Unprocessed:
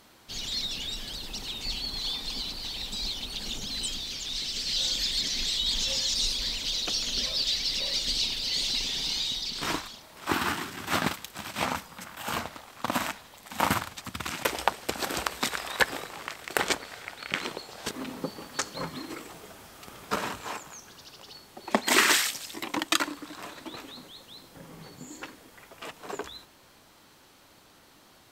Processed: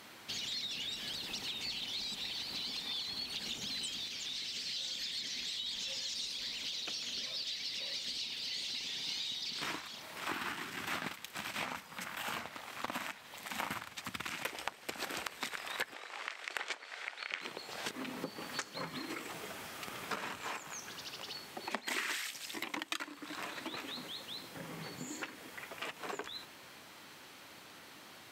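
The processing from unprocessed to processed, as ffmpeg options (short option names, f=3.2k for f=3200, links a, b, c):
-filter_complex "[0:a]asplit=3[a][b][c];[a]afade=t=out:st=4.07:d=0.02[d];[b]flanger=delay=4:depth=9:regen=-75:speed=1.2:shape=triangular,afade=t=in:st=4.07:d=0.02,afade=t=out:st=9.07:d=0.02[e];[c]afade=t=in:st=9.07:d=0.02[f];[d][e][f]amix=inputs=3:normalize=0,asettb=1/sr,asplit=3[g][h][i];[g]atrim=end=15.944[j];[h]atrim=start=15.94:end=17.41,asetpts=PTS-STARTPTS,afade=t=in:d=0.004:c=qsin,afade=t=out:st=1.466:d=0.004:c=qsin,highpass=480,lowpass=7.3k[k];[i]atrim=start=17.406[l];[j][k]acrossfade=d=0.004:c1=hsin:c2=qsin[m];[m][l]acrossfade=d=0.004:c1=qsin:c2=hsin,asplit=3[n][o][p];[n]atrim=end=1.812[q];[o]atrim=start=1.808:end=3.262,asetpts=PTS-STARTPTS,areverse[r];[p]atrim=start=3.258[s];[q][r]acrossfade=d=0.004:c1=hsin:c2=hsin[t];[t][s]acrossfade=d=0.004:c1=hsin:c2=hsin,highpass=110,equalizer=f=2.2k:t=o:w=1.3:g=6,acompressor=threshold=-40dB:ratio=4,volume=1dB"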